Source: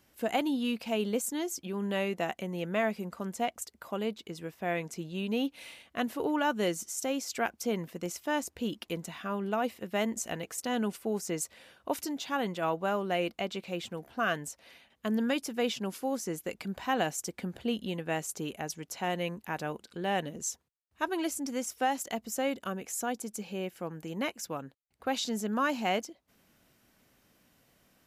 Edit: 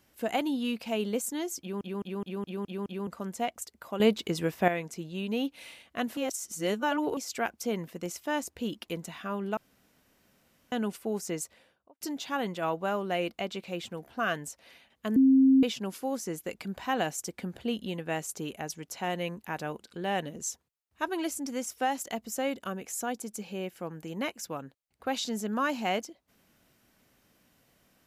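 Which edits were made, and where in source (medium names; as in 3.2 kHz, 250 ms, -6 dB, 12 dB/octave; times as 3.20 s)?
1.60 s: stutter in place 0.21 s, 7 plays
4.00–4.68 s: gain +10.5 dB
6.17–7.17 s: reverse
9.57–10.72 s: room tone
11.31–12.01 s: studio fade out
15.16–15.63 s: bleep 266 Hz -16.5 dBFS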